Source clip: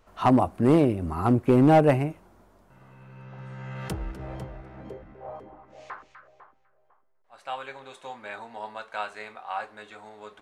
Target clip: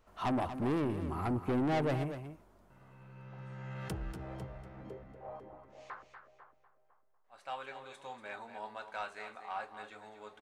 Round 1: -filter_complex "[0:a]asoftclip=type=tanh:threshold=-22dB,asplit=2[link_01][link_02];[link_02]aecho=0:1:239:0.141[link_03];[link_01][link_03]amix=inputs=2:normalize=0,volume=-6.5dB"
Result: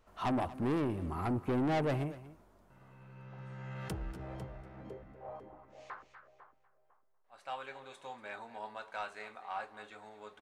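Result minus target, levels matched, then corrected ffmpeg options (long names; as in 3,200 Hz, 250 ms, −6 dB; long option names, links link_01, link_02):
echo-to-direct −6.5 dB
-filter_complex "[0:a]asoftclip=type=tanh:threshold=-22dB,asplit=2[link_01][link_02];[link_02]aecho=0:1:239:0.299[link_03];[link_01][link_03]amix=inputs=2:normalize=0,volume=-6.5dB"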